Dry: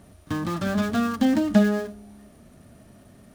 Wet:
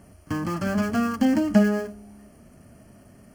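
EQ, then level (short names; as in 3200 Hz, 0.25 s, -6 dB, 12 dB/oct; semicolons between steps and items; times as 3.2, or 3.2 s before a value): Butterworth band-stop 3700 Hz, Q 3.4; 0.0 dB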